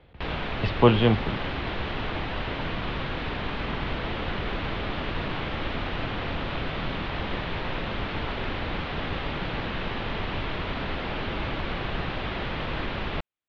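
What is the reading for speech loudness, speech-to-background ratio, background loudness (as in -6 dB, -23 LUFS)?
-23.0 LUFS, 8.0 dB, -31.0 LUFS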